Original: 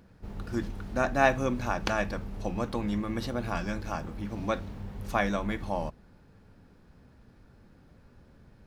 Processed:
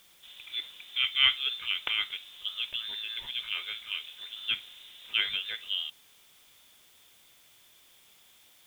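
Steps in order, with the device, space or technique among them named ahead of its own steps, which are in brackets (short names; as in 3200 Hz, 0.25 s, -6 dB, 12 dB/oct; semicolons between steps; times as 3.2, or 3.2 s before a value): scrambled radio voice (BPF 340–2600 Hz; inverted band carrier 3800 Hz; white noise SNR 26 dB)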